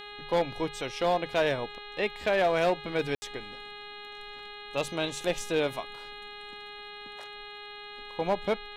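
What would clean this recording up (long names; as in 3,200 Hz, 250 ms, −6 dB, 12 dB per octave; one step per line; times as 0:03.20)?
clipped peaks rebuilt −19 dBFS
hum removal 413.1 Hz, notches 10
ambience match 0:03.15–0:03.22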